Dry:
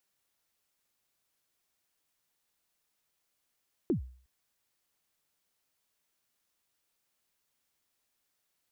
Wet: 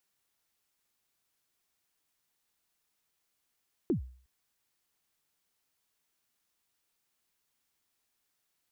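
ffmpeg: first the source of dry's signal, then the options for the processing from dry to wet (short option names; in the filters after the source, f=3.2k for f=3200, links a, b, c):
-f lavfi -i "aevalsrc='0.0794*pow(10,-3*t/0.47)*sin(2*PI*(400*0.111/log(63/400)*(exp(log(63/400)*min(t,0.111)/0.111)-1)+63*max(t-0.111,0)))':d=0.36:s=44100"
-af "equalizer=f=570:t=o:w=0.22:g=-5"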